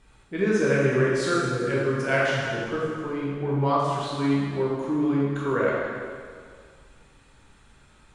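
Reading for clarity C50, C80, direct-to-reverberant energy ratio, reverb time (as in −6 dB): −2.0 dB, 0.0 dB, −6.5 dB, 2.0 s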